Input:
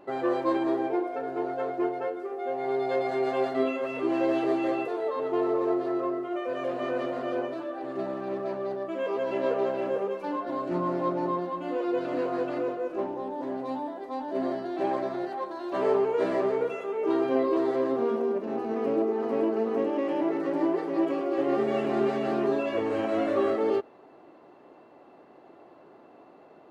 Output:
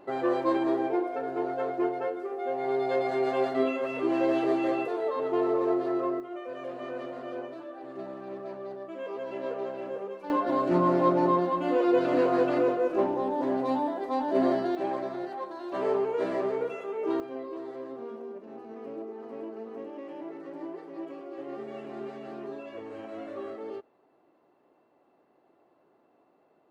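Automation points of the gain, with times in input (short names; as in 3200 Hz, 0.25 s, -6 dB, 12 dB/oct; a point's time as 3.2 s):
0 dB
from 6.2 s -7 dB
from 10.3 s +5 dB
from 14.75 s -3 dB
from 17.2 s -13 dB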